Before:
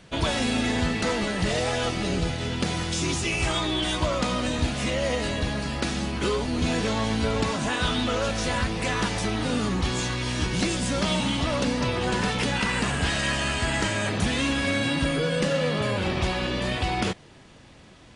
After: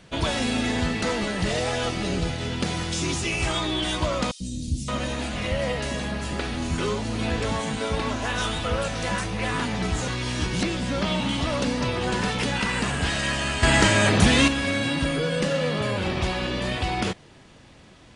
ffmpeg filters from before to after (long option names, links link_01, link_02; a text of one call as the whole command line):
ffmpeg -i in.wav -filter_complex "[0:a]asettb=1/sr,asplit=3[link_01][link_02][link_03];[link_01]atrim=end=4.314[link_04];[link_02]atrim=start=4.31:end=10.08,asetpts=PTS-STARTPTS,afade=type=in:duration=0.004:curve=qsin,afade=type=out:start_time=5.766:duration=0.004:curve=qsin,acrossover=split=280|4600[link_05][link_06][link_07];[link_05]adelay=90[link_08];[link_06]adelay=570[link_09];[link_08][link_09][link_07]amix=inputs=3:normalize=0,atrim=end_sample=254457[link_10];[link_03]atrim=start=10.076[link_11];[link_04][link_10]acrossfade=duration=0.004:curve1=hsin:curve2=qsin[link_12];[link_12][link_11]acrossfade=duration=0.004:curve1=qsin:curve2=hsin,asettb=1/sr,asplit=3[link_13][link_14][link_15];[link_13]atrim=end=10.634[link_16];[link_14]atrim=start=10.63:end=11.29,asetpts=PTS-STARTPTS,afade=type=in:duration=0.004:curve=qsin,afade=type=out:start_time=0.656:duration=0.004:curve=qsin,acrossover=split=4600[link_17][link_18];[link_18]acompressor=threshold=-46dB:ratio=4:attack=1:release=60[link_19];[link_17][link_19]amix=inputs=2:normalize=0[link_20];[link_15]atrim=start=11.286[link_21];[link_16][link_20]acrossfade=duration=0.004:curve1=hsin:curve2=qsin[link_22];[link_22][link_21]acrossfade=duration=0.004:curve1=qsin:curve2=hsin,asplit=3[link_23][link_24][link_25];[link_23]atrim=end=13.632[link_26];[link_24]atrim=start=13.628:end=14.482,asetpts=PTS-STARTPTS,volume=7.5dB[link_27];[link_25]atrim=start=14.478[link_28];[link_26][link_27]acrossfade=duration=0.004:curve1=hsin:curve2=hsin[link_29];[link_29][link_28]acrossfade=duration=0.004:curve1=hsin:curve2=hsin" out.wav